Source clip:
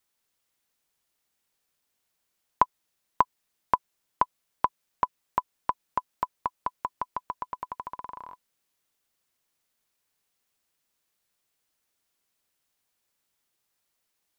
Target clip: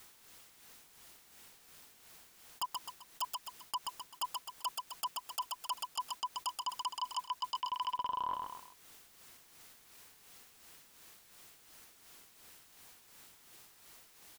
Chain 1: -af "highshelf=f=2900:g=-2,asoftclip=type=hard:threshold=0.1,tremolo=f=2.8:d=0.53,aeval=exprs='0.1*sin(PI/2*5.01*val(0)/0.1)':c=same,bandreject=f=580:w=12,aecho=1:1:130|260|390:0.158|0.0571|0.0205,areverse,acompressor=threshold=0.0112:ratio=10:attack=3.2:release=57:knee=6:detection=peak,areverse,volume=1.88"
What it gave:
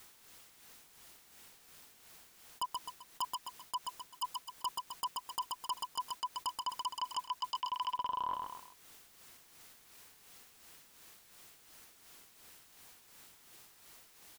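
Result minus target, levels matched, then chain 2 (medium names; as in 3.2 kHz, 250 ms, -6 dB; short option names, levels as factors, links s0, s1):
hard clipper: distortion +10 dB
-af "highshelf=f=2900:g=-2,asoftclip=type=hard:threshold=0.282,tremolo=f=2.8:d=0.53,aeval=exprs='0.1*sin(PI/2*5.01*val(0)/0.1)':c=same,bandreject=f=580:w=12,aecho=1:1:130|260|390:0.158|0.0571|0.0205,areverse,acompressor=threshold=0.0112:ratio=10:attack=3.2:release=57:knee=6:detection=peak,areverse,volume=1.88"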